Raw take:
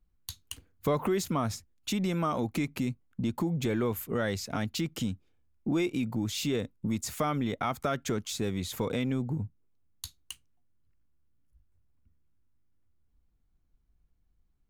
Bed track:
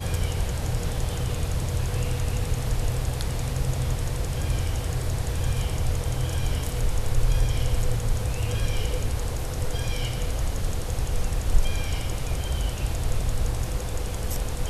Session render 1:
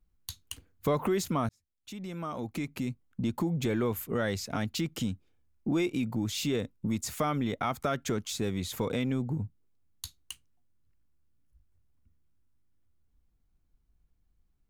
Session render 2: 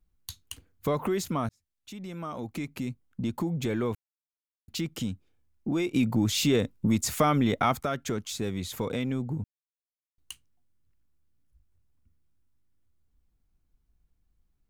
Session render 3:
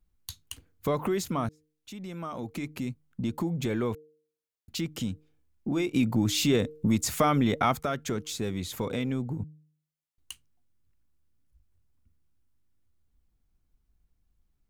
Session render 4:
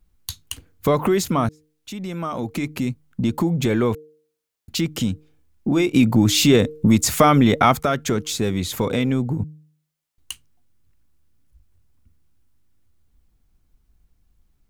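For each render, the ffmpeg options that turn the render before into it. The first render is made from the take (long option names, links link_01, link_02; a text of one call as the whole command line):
ffmpeg -i in.wav -filter_complex "[0:a]asplit=2[link_01][link_02];[link_01]atrim=end=1.49,asetpts=PTS-STARTPTS,afade=type=out:start_time=1.486:duration=0.004:curve=hsin[link_03];[link_02]atrim=start=1.49,asetpts=PTS-STARTPTS,afade=type=in:duration=1.77[link_04];[link_03][link_04]concat=n=2:v=0:a=1" out.wav
ffmpeg -i in.wav -filter_complex "[0:a]asplit=3[link_01][link_02][link_03];[link_01]afade=type=out:start_time=5.94:duration=0.02[link_04];[link_02]acontrast=62,afade=type=in:start_time=5.94:duration=0.02,afade=type=out:start_time=7.79:duration=0.02[link_05];[link_03]afade=type=in:start_time=7.79:duration=0.02[link_06];[link_04][link_05][link_06]amix=inputs=3:normalize=0,asplit=5[link_07][link_08][link_09][link_10][link_11];[link_07]atrim=end=3.95,asetpts=PTS-STARTPTS,afade=type=out:start_time=3.946:duration=0.004:curve=hsin[link_12];[link_08]atrim=start=3.95:end=4.68,asetpts=PTS-STARTPTS,volume=0[link_13];[link_09]atrim=start=4.68:end=9.44,asetpts=PTS-STARTPTS,afade=type=in:duration=0.004:curve=hsin,afade=type=out:start_time=4.756:duration=0.004:curve=hsin[link_14];[link_10]atrim=start=9.44:end=10.18,asetpts=PTS-STARTPTS,volume=0[link_15];[link_11]atrim=start=10.18,asetpts=PTS-STARTPTS,afade=type=in:duration=0.004:curve=hsin[link_16];[link_12][link_13][link_14][link_15][link_16]concat=n=5:v=0:a=1" out.wav
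ffmpeg -i in.wav -af "bandreject=frequency=153.1:width_type=h:width=4,bandreject=frequency=306.2:width_type=h:width=4,bandreject=frequency=459.3:width_type=h:width=4" out.wav
ffmpeg -i in.wav -af "volume=9.5dB" out.wav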